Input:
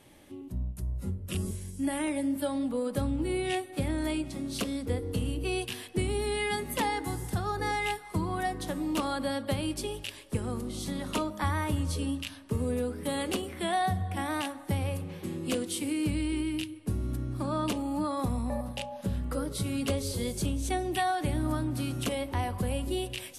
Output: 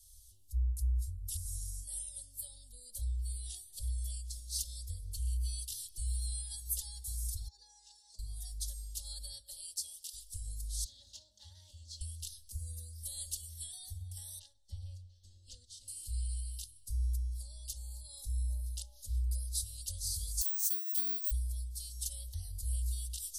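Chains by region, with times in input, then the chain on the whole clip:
7.48–8.19 s: comb 4.7 ms, depth 87% + compression 12:1, threshold -34 dBFS + cabinet simulation 280–6300 Hz, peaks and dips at 440 Hz +3 dB, 740 Hz +6 dB, 1.4 kHz -9 dB, 2.1 kHz -4 dB, 3.2 kHz -7 dB
9.40–10.13 s: high-pass 310 Hz 24 dB/octave + AM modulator 170 Hz, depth 50%
10.84–12.01 s: comb filter that takes the minimum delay 3.3 ms + high-pass 120 Hz 24 dB/octave + distance through air 160 m
14.39–15.88 s: distance through air 150 m + upward expansion, over -46 dBFS
20.41–21.31 s: high-pass 480 Hz + treble shelf 7.7 kHz +5 dB + careless resampling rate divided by 2×, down filtered, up zero stuff
whole clip: compression 3:1, threshold -33 dBFS; inverse Chebyshev band-stop 140–2500 Hz, stop band 40 dB; comb 3.6 ms, depth 79%; trim +3.5 dB

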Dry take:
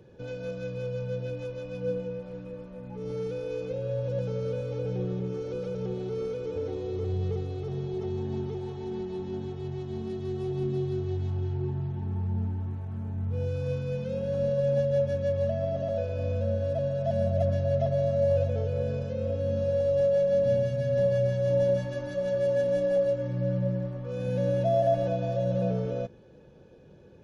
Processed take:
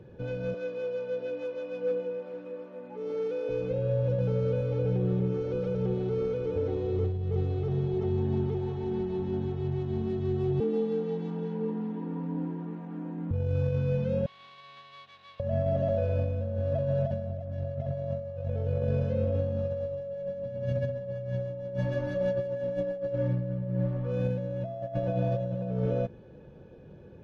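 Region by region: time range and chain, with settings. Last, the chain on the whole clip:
0.54–3.49 s: high-pass 270 Hz 24 dB/octave + hard clipper -25 dBFS
10.60–13.31 s: high-pass 170 Hz + frequency shift +77 Hz
14.26–15.40 s: comb filter that takes the minimum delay 0.77 ms + band-pass filter 3.8 kHz, Q 3.6
whole clip: tone controls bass +3 dB, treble -12 dB; compressor with a negative ratio -28 dBFS, ratio -0.5

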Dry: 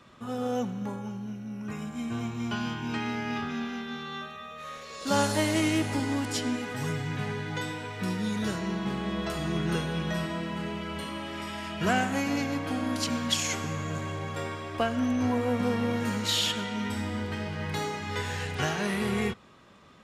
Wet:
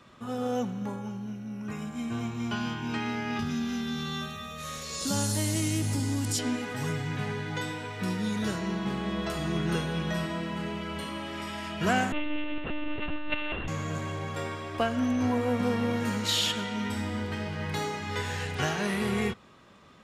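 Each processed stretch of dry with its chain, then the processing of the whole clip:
3.39–6.39 s: high-pass 44 Hz + tone controls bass +14 dB, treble +15 dB + compression 2.5:1, threshold -29 dBFS
12.12–13.68 s: sorted samples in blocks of 16 samples + monotone LPC vocoder at 8 kHz 300 Hz
whole clip: none

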